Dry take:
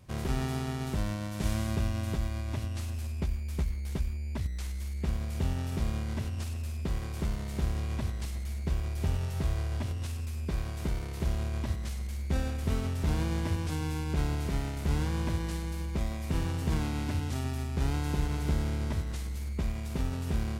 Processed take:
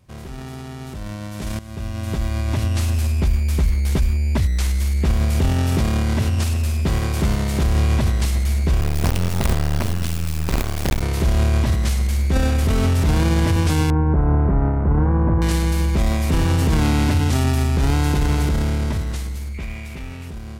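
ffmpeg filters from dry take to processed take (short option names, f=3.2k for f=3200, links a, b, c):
-filter_complex "[0:a]asettb=1/sr,asplit=3[a][b][c];[a]atrim=end=5.494[d];[b]atrim=start=5.49:end=7.66,asetpts=PTS-STARTPTS,afade=t=in:d=0.004:c=qsin,afade=t=out:st=2.166:d=0.004:c=qsin,highpass=59[e];[c]atrim=start=7.656[f];[d][e]acrossfade=d=0.004:c1=hsin:c2=qsin[g];[g][f]acrossfade=d=0.004:c1=qsin:c2=hsin,asettb=1/sr,asplit=3[h][i][j];[h]atrim=end=8.814[k];[i]atrim=start=8.81:end=11.02,asetpts=PTS-STARTPTS,afade=t=in:d=0.004:c=qsin,afade=t=out:st=2.206:d=0.004:c=qsin,acrusher=bits=5:dc=4:mix=0:aa=0.000001[l];[j]atrim=start=11.016[m];[k][l]acrossfade=d=0.004:c1=hsin:c2=qsin[n];[n][m]acrossfade=d=0.004:c1=qsin:c2=hsin,asettb=1/sr,asplit=3[o][p][q];[o]atrim=end=13.904[r];[p]atrim=start=13.9:end=15.42,asetpts=PTS-STARTPTS,afade=t=in:d=0.004:c=qsin,afade=t=out:st=1.516:d=0.004:c=qsin,lowpass=f=1.3k:w=0.5412,lowpass=f=1.3k:w=1.3066[s];[q]atrim=start=15.416[t];[r][s]acrossfade=d=0.004:c1=hsin:c2=qsin[u];[u][t]acrossfade=d=0.004:c1=qsin:c2=hsin,asettb=1/sr,asplit=3[v][w][x];[v]atrim=end=19.544[y];[w]atrim=start=19.54:end=20.28,asetpts=PTS-STARTPTS,afade=t=in:d=0.004:c=qsin,afade=t=out:st=0.736:d=0.004:c=qsin,equalizer=f=2.3k:w=2.2:g=12[z];[x]atrim=start=20.276[aa];[y][z]acrossfade=d=0.004:c1=hsin:c2=qsin[ab];[ab][aa]acrossfade=d=0.004:c1=qsin:c2=hsin,asplit=2[ac][ad];[ac]atrim=end=1.59,asetpts=PTS-STARTPTS,afade=t=out:st=1.586:d=0.004:c=hsin:silence=0.133352[ae];[ad]atrim=start=1.59,asetpts=PTS-STARTPTS,afade=t=in:d=1.43:c=qsin:silence=0.133352[af];[ae][af]concat=n=2:v=0:a=1,alimiter=level_in=2.5dB:limit=-24dB:level=0:latency=1:release=11,volume=-2.5dB,dynaudnorm=f=230:g=17:m=16dB"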